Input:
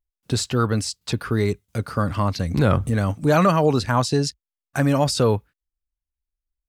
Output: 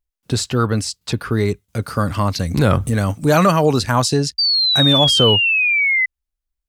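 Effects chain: 1.82–4.14 high shelf 4600 Hz +8 dB; 4.38–6.06 painted sound fall 2000–4700 Hz -19 dBFS; gain +3 dB

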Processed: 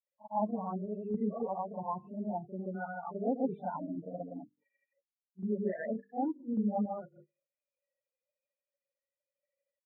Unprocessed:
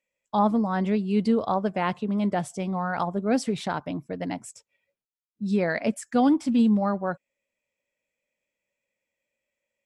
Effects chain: loudest bins only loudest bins 8; low shelf 420 Hz -10 dB; notches 50/100/150/200/250/300/350/400/450/500 Hz; grains 0.127 s, grains 13/s, pitch spread up and down by 0 st; random-step tremolo, depth 55%; in parallel at -1 dB: compressor, threshold -45 dBFS, peak gain reduction 17 dB; on the sum: Gaussian blur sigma 5.3 samples; low shelf 75 Hz -9 dB; on a send: reverse echo 38 ms -10 dB

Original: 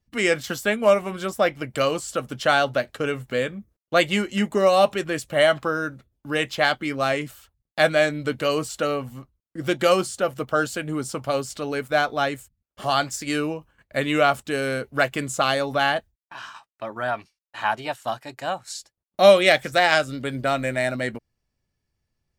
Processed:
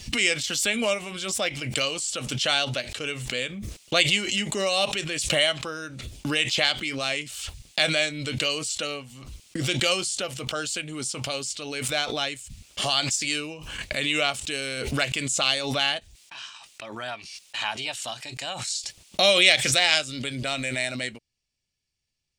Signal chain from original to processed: band shelf 4600 Hz +15 dB 2.4 oct; backwards sustainer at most 39 dB/s; gain -10 dB

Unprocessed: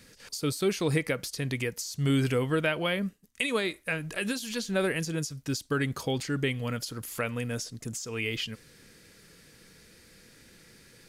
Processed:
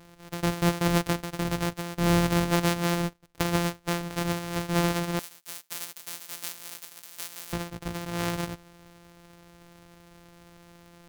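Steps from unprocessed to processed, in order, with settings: sample sorter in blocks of 256 samples; 5.19–7.53 differentiator; gain +2.5 dB

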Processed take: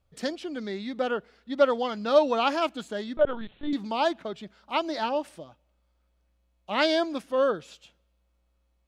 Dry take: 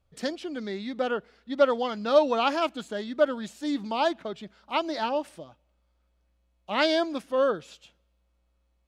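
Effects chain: 3.17–3.73 LPC vocoder at 8 kHz pitch kept

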